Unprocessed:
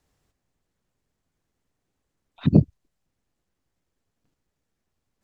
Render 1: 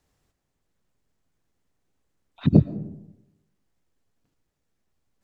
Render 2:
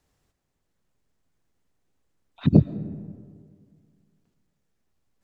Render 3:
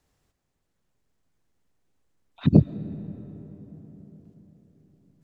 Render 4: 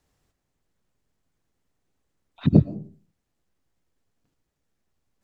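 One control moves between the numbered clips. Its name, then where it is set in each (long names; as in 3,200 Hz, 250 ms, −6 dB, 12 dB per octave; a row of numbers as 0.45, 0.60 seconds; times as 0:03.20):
comb and all-pass reverb, RT60: 0.92, 2, 4.9, 0.42 seconds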